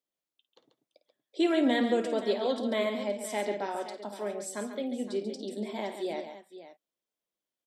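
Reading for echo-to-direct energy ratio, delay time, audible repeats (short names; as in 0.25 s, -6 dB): -6.5 dB, 53 ms, 3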